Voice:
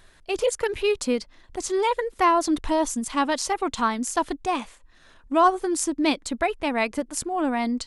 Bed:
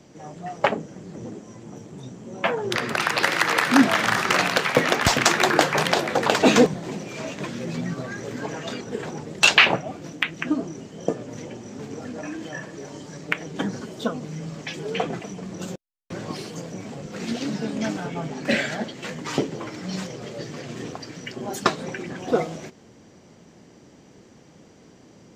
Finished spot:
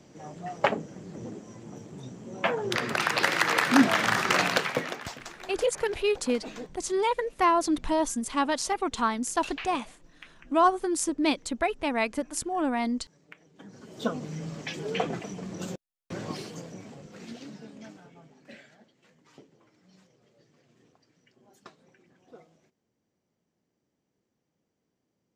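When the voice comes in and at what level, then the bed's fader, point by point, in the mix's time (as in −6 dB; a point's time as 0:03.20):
5.20 s, −3.0 dB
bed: 0:04.56 −3.5 dB
0:05.26 −25 dB
0:13.57 −25 dB
0:14.06 −3 dB
0:16.28 −3 dB
0:18.79 −29.5 dB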